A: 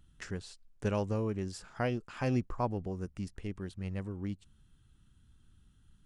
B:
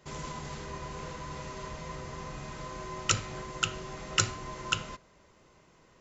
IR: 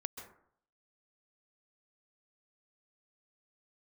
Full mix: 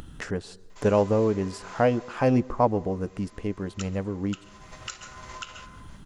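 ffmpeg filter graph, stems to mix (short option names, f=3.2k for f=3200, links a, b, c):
-filter_complex "[0:a]equalizer=f=530:t=o:w=2.8:g=10.5,bandreject=f=370:w=12,acontrast=23,volume=-2.5dB,asplit=3[a][b][c];[b]volume=-16.5dB[d];[1:a]highpass=680,adelay=700,volume=5dB,afade=t=out:st=1.91:d=0.42:silence=0.354813,afade=t=in:st=4.42:d=0.56:silence=0.281838,asplit=2[e][f];[f]volume=-7.5dB[g];[c]apad=whole_len=295605[h];[e][h]sidechaingate=range=-33dB:threshold=-55dB:ratio=16:detection=peak[i];[2:a]atrim=start_sample=2205[j];[d][g]amix=inputs=2:normalize=0[k];[k][j]afir=irnorm=-1:irlink=0[l];[a][i][l]amix=inputs=3:normalize=0,acompressor=mode=upward:threshold=-31dB:ratio=2.5"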